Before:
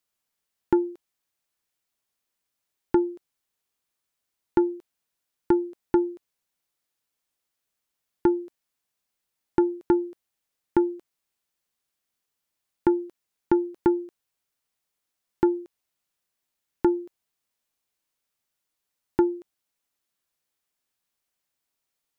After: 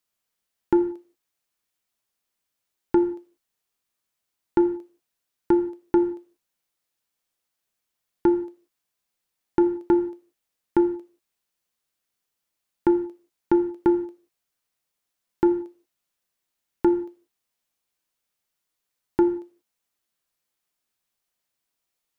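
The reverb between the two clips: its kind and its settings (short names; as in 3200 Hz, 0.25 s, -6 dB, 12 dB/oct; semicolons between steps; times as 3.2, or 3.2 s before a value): non-linear reverb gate 0.21 s falling, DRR 7 dB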